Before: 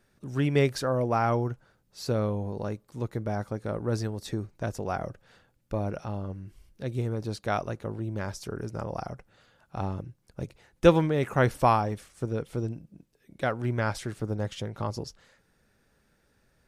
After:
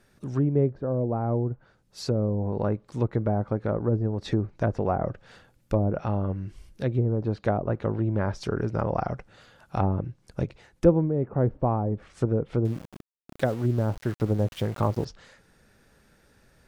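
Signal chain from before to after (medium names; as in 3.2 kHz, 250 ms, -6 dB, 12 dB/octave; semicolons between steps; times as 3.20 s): low-pass that closes with the level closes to 510 Hz, closed at -24.5 dBFS; gain riding within 3 dB 0.5 s; 12.65–15.05 s: small samples zeroed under -44 dBFS; trim +4.5 dB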